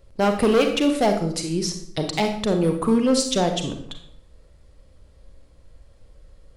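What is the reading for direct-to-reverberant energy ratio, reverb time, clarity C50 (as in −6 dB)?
5.0 dB, 0.60 s, 7.5 dB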